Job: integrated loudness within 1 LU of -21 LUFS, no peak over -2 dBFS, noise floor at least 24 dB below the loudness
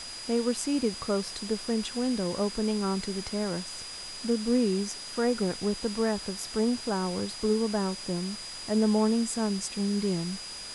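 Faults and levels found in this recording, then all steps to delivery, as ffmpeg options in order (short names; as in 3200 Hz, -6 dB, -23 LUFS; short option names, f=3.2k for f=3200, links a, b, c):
steady tone 4900 Hz; tone level -40 dBFS; noise floor -41 dBFS; noise floor target -54 dBFS; loudness -29.5 LUFS; peak -14.0 dBFS; loudness target -21.0 LUFS
-> -af "bandreject=f=4.9k:w=30"
-af "afftdn=nr=13:nf=-41"
-af "volume=8.5dB"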